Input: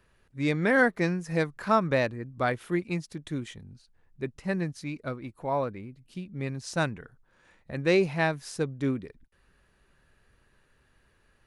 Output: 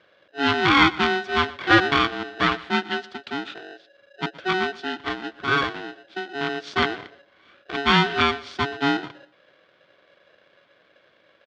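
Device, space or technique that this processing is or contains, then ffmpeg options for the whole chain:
ring modulator pedal into a guitar cabinet: -filter_complex "[0:a]asettb=1/sr,asplit=3[a][b][c];[a]atrim=end=2.874[d];[b]atrim=start=2.87:end=3.49,asetpts=PTS-STARTPTS,afade=t=in:d=0.004:c=qsin,afade=t=out:st=0.616:d=0.004:c=qsin,lowshelf=f=180:g=-7.5[e];[c]atrim=start=3.486[f];[d][e]acrossfade=d=0.004:c1=hsin:c2=qsin[g];[g][f]acrossfade=d=0.004:c1=qsin:c2=hsin,aeval=exprs='val(0)*sgn(sin(2*PI*560*n/s))':c=same,highpass=110,equalizer=f=320:t=q:w=4:g=6,equalizer=f=900:t=q:w=4:g=-5,equalizer=f=1.5k:t=q:w=4:g=9,equalizer=f=3.4k:t=q:w=4:g=6,lowpass=f=4.4k:w=0.5412,lowpass=f=4.4k:w=1.3066,aecho=1:1:120|240|360:0.1|0.032|0.0102,volume=4.5dB"

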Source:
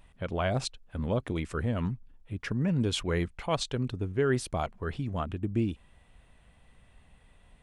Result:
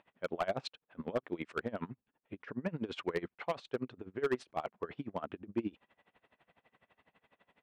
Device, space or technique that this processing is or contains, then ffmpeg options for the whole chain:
helicopter radio: -af "highpass=310,lowpass=2.6k,aeval=exprs='val(0)*pow(10,-24*(0.5-0.5*cos(2*PI*12*n/s))/20)':c=same,asoftclip=type=hard:threshold=-28.5dB,volume=3.5dB"

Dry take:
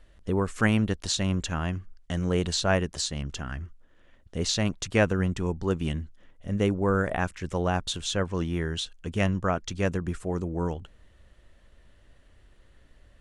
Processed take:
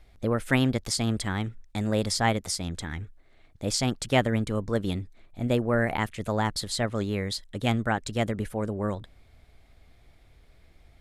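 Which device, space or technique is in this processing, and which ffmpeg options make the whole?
nightcore: -af "asetrate=52920,aresample=44100"

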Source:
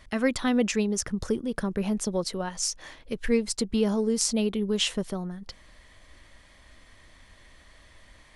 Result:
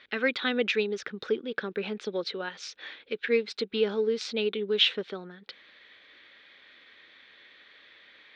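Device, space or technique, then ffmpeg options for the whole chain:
phone earpiece: -af "highpass=380,equalizer=f=430:t=q:w=4:g=5,equalizer=f=660:t=q:w=4:g=-9,equalizer=f=1k:t=q:w=4:g=-8,equalizer=f=1.5k:t=q:w=4:g=6,equalizer=f=2.4k:t=q:w=4:g=6,equalizer=f=3.7k:t=q:w=4:g=10,lowpass=f=3.9k:w=0.5412,lowpass=f=3.9k:w=1.3066"

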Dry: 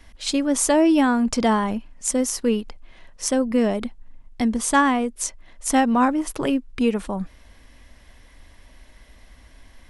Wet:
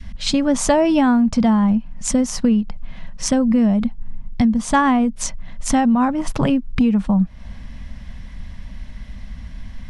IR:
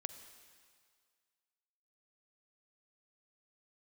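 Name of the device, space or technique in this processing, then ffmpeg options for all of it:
jukebox: -af "lowpass=6.3k,lowshelf=f=260:t=q:w=3:g=10,acompressor=threshold=-21dB:ratio=6,adynamicequalizer=threshold=0.01:dfrequency=730:dqfactor=0.96:tfrequency=730:tqfactor=0.96:attack=5:release=100:ratio=0.375:range=3:mode=boostabove:tftype=bell,volume=6dB"

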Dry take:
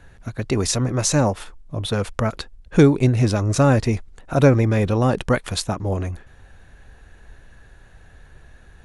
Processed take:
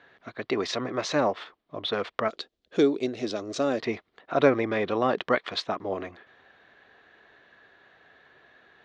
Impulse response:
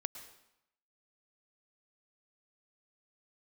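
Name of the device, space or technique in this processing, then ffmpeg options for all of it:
phone earpiece: -filter_complex "[0:a]highpass=470,equalizer=f=530:t=q:w=4:g=-5,equalizer=f=870:t=q:w=4:g=-7,equalizer=f=1.5k:t=q:w=4:g=-5,equalizer=f=2.6k:t=q:w=4:g=-6,lowpass=f=3.7k:w=0.5412,lowpass=f=3.7k:w=1.3066,asettb=1/sr,asplit=3[a][b][c];[a]atrim=end=2.284[d];[b]atrim=start=2.28:end=3.8,asetpts=PTS-STARTPTS,afade=t=in:d=0.004:c=qsin,afade=t=out:st=1.516:d=0.004:c=qsin,equalizer=f=125:t=o:w=1:g=-9,equalizer=f=1k:t=o:w=1:g=-10,equalizer=f=2k:t=o:w=1:g=-8,equalizer=f=8k:t=o:w=1:g=10[e];[c]atrim=start=3.796[f];[d][e]acrossfade=d=0.004:c1=hsin:c2=qsin[g];[g][f]acrossfade=d=0.004:c1=qsin:c2=hsin,volume=2.5dB"

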